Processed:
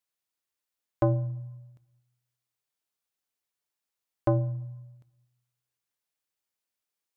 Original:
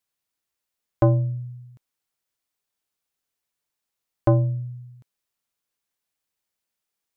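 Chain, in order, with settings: bass shelf 200 Hz -4.5 dB; on a send: reverberation RT60 1.1 s, pre-delay 3 ms, DRR 18.5 dB; on the sum: trim -4.5 dB

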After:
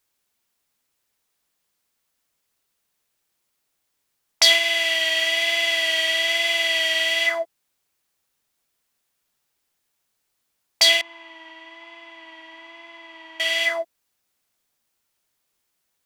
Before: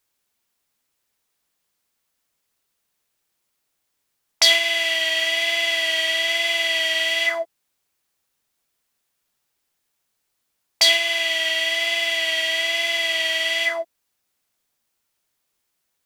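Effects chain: 11.01–13.40 s: two resonant band-passes 530 Hz, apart 1.6 oct

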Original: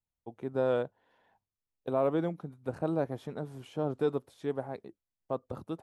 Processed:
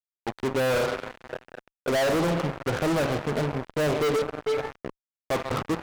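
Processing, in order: 4.16–4.82 s: feedback comb 440 Hz, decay 0.33 s, harmonics all, mix 90%; two-slope reverb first 0.51 s, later 4.5 s, from -16 dB, DRR 9 dB; LFO low-pass sine 0.43 Hz 610–1600 Hz; thinning echo 136 ms, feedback 46%, high-pass 580 Hz, level -16 dB; fuzz box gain 43 dB, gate -43 dBFS; trim -8.5 dB

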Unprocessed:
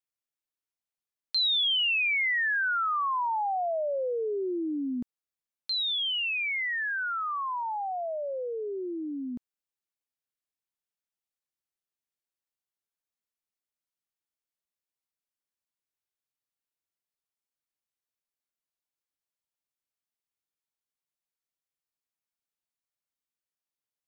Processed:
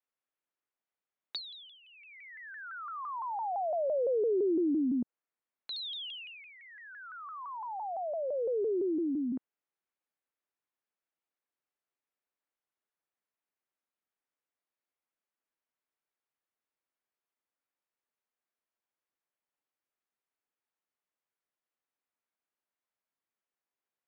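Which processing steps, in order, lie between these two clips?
three-band isolator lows -15 dB, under 210 Hz, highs -19 dB, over 2.6 kHz; low-pass that closes with the level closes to 470 Hz, closed at -31 dBFS; vibrato with a chosen wave saw down 5.9 Hz, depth 160 cents; trim +4.5 dB

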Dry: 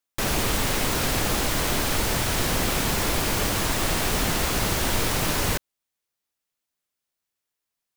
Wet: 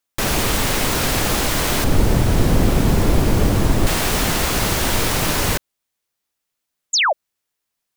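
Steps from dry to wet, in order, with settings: 1.84–3.87 s: tilt shelf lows +8 dB, about 670 Hz; 6.93–7.13 s: painted sound fall 520–7800 Hz -21 dBFS; trim +5 dB

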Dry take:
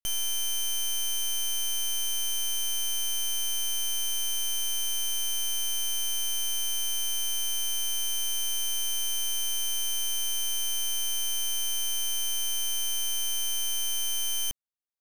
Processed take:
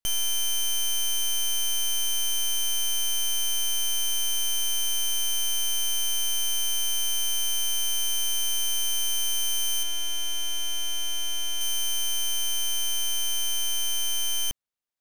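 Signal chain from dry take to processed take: treble shelf 5.8 kHz -2 dB, from 9.83 s -11 dB, from 11.61 s -4 dB; trim +4 dB

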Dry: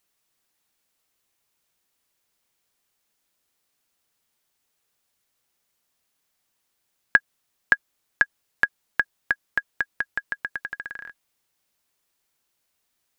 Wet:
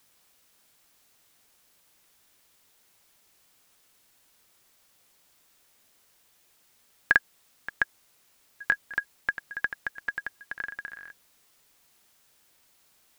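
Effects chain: granulator, pitch spread up and down by 0 st; added noise white -61 dBFS; trim -3.5 dB

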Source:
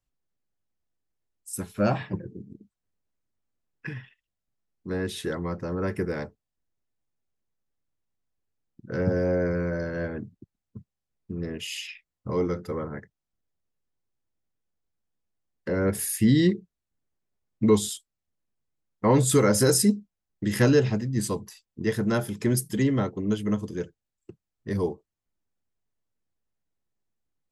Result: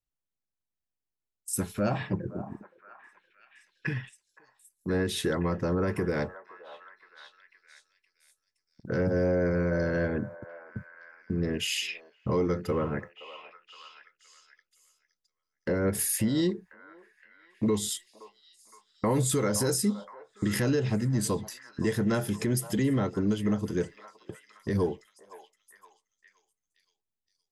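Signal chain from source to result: gate -47 dBFS, range -14 dB; 16.28–17.67 s: graphic EQ 125/250/1000/2000 Hz -9/-4/+10/-10 dB; compression 3:1, threshold -28 dBFS, peak gain reduction 10.5 dB; peak limiter -22.5 dBFS, peak gain reduction 6 dB; repeats whose band climbs or falls 519 ms, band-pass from 840 Hz, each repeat 0.7 oct, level -10 dB; trim +4.5 dB

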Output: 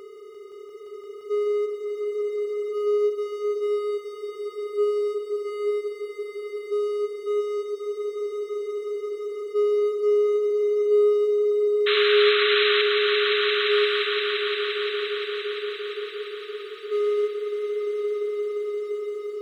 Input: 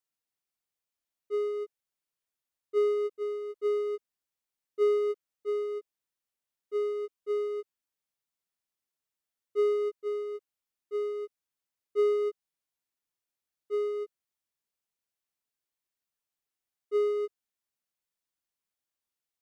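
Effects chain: spectral levelling over time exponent 0.2; band-stop 2.6 kHz, Q 24; painted sound noise, 11.86–12.82 s, 1.1–4.1 kHz -24 dBFS; echo with a slow build-up 173 ms, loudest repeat 5, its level -8 dB

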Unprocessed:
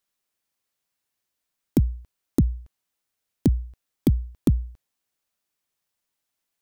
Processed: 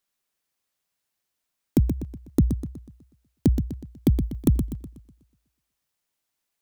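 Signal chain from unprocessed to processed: 4.08–4.66 s: treble shelf 12 kHz -> 8 kHz +8.5 dB; modulated delay 123 ms, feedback 44%, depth 124 cents, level -8 dB

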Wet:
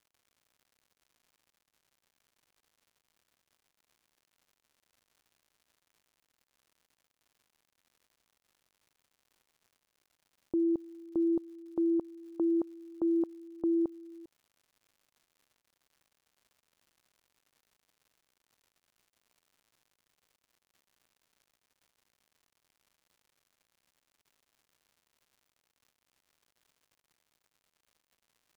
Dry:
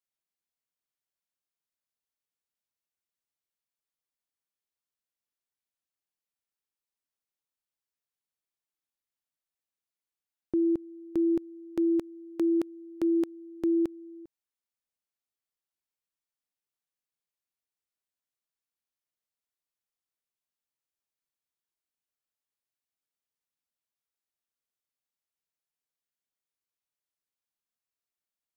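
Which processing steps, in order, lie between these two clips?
steep low-pass 1.1 kHz; bass shelf 270 Hz -7.5 dB; crackle 190 per s -56 dBFS

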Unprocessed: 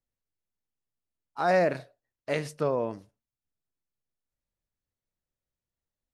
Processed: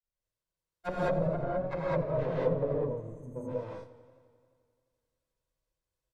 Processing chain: comb filter that takes the minimum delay 1.9 ms; on a send: delay 140 ms -22 dB; on the sum: granulator 150 ms, grains 24 per s, spray 700 ms; in parallel at -9.5 dB: sample-and-hold 15×; on the sum: low-pass that closes with the level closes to 300 Hz, closed at -28.5 dBFS; spectral selection erased 2.82–3.36 s, 350–6000 Hz; gated-style reverb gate 230 ms rising, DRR -7 dB; modulated delay 87 ms, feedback 75%, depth 84 cents, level -16 dB

